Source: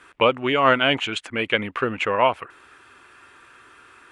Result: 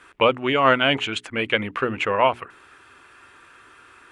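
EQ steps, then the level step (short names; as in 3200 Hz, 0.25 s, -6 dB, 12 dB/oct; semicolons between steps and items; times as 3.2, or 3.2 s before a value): low shelf 140 Hz +3 dB; notches 60/120/180/240/300/360/420 Hz; 0.0 dB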